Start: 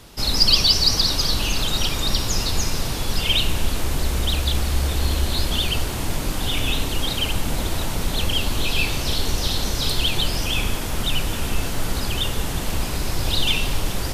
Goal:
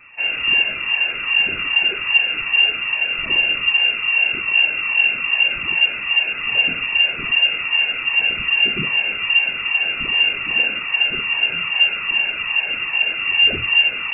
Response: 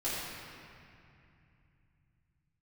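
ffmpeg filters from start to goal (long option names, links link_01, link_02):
-af "afftfilt=real='re*pow(10,13/40*sin(2*PI*(1.1*log(max(b,1)*sr/1024/100)/log(2)-(2.5)*(pts-256)/sr)))':imag='im*pow(10,13/40*sin(2*PI*(1.1*log(max(b,1)*sr/1024/100)/log(2)-(2.5)*(pts-256)/sr)))':win_size=1024:overlap=0.75,lowpass=frequency=2400:width_type=q:width=0.5098,lowpass=frequency=2400:width_type=q:width=0.6013,lowpass=frequency=2400:width_type=q:width=0.9,lowpass=frequency=2400:width_type=q:width=2.563,afreqshift=-2800"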